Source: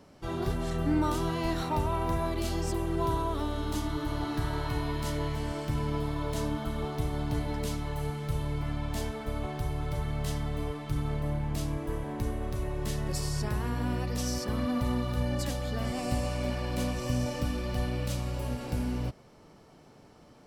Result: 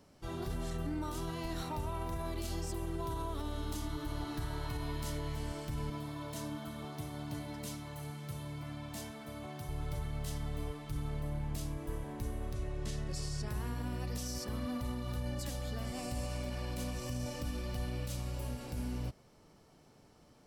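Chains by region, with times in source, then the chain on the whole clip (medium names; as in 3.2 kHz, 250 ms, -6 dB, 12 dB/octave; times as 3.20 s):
5.90–9.69 s: high-pass 130 Hz + comb of notches 420 Hz
12.53–13.48 s: low-pass 7.5 kHz + band-stop 940 Hz, Q 5.9
whole clip: treble shelf 4.5 kHz +7.5 dB; peak limiter -22.5 dBFS; bass shelf 110 Hz +4.5 dB; trim -8 dB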